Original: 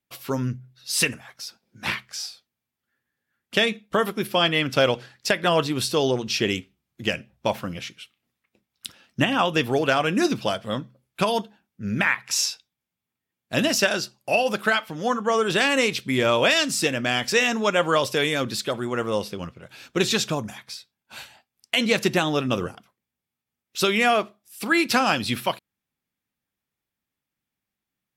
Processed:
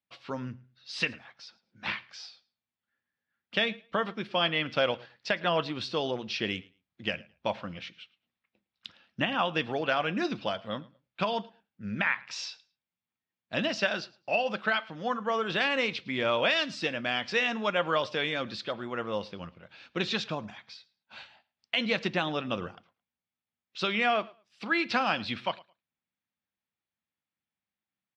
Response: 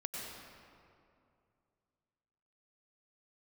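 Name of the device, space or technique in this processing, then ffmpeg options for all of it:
guitar cabinet: -af "highpass=85,equalizer=f=130:t=q:w=4:g=-7,equalizer=f=270:t=q:w=4:g=-4,equalizer=f=400:t=q:w=4:g=-6,lowpass=f=4.4k:w=0.5412,lowpass=f=4.4k:w=1.3066,aecho=1:1:109|218:0.0708|0.0127,volume=-6dB"

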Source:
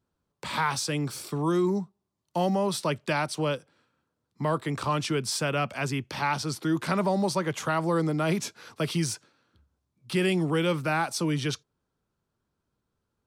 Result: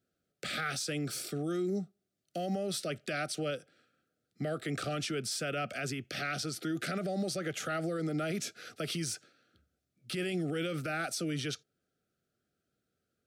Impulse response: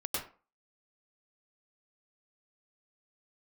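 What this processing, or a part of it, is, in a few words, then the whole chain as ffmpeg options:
PA system with an anti-feedback notch: -af "highpass=f=190:p=1,asuperstop=centerf=970:order=12:qfactor=2.2,alimiter=level_in=2.5dB:limit=-24dB:level=0:latency=1:release=62,volume=-2.5dB"

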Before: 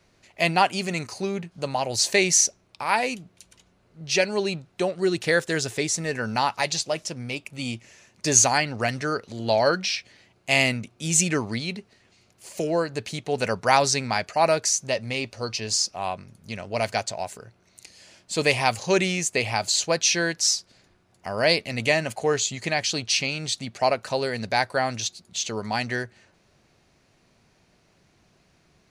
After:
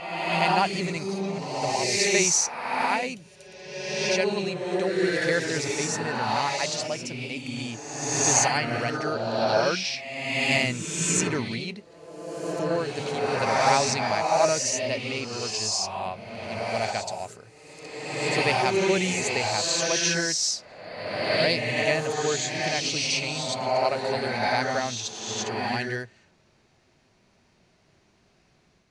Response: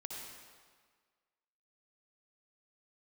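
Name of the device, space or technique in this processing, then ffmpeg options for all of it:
reverse reverb: -filter_complex "[0:a]areverse[a];[1:a]atrim=start_sample=2205[b];[a][b]afir=irnorm=-1:irlink=0,areverse,lowpass=9k,volume=1dB"

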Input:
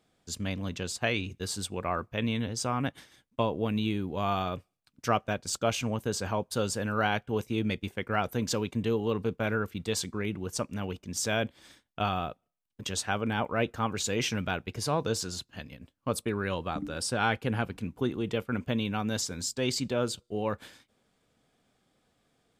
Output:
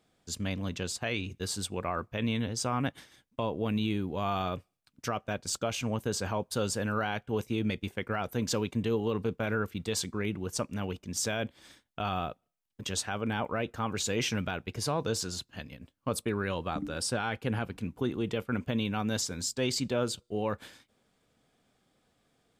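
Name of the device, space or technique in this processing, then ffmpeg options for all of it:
stacked limiters: -af "alimiter=limit=-16.5dB:level=0:latency=1:release=293,alimiter=limit=-20dB:level=0:latency=1:release=28"

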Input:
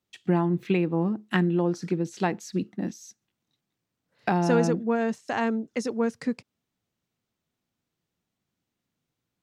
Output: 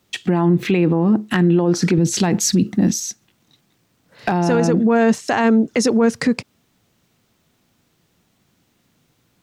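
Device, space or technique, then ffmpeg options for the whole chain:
loud club master: -filter_complex "[0:a]asettb=1/sr,asplit=3[a][b][c];[a]atrim=end=1.984[d];[b]atrim=start=1.98:end=3,asetpts=PTS-STARTPTS,afade=t=in:d=0.004:c=qsin,afade=t=out:st=1.016:d=0.004:c=qsin,bass=f=250:g=8,treble=f=4k:g=6[e];[c]atrim=start=2.996[f];[d][e]acrossfade=d=0.004:c1=hsin:c2=qsin[g];[g][f]acrossfade=d=0.004:c1=qsin:c2=hsin,acompressor=threshold=-26dB:ratio=2.5,asoftclip=type=hard:threshold=-17dB,alimiter=level_in=27dB:limit=-1dB:release=50:level=0:latency=1,volume=-7dB"

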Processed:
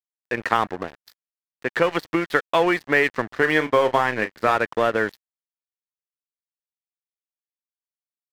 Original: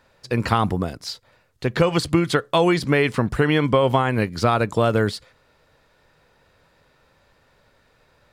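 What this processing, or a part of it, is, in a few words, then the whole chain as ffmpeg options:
pocket radio on a weak battery: -filter_complex "[0:a]highpass=330,lowpass=3.1k,aeval=exprs='sgn(val(0))*max(abs(val(0))-0.0211,0)':c=same,equalizer=f=1.8k:t=o:w=0.37:g=8,asettb=1/sr,asplit=3[a][b][c];[a]atrim=end=3.294[d];[b]atrim=start=3.29:end=4.57,asetpts=PTS-STARTPTS,afade=t=in:d=0.004:c=qsin,afade=t=out:st=1.276:d=0.004:c=qsin,asplit=2[e][f];[f]adelay=32,volume=-11dB[g];[e][g]amix=inputs=2:normalize=0,atrim=end_sample=56448[h];[c]atrim=start=4.566[i];[d][h]acrossfade=d=0.004:c1=hsin:c2=qsin[j];[j][i]acrossfade=d=0.004:c1=qsin:c2=hsin,volume=1dB"

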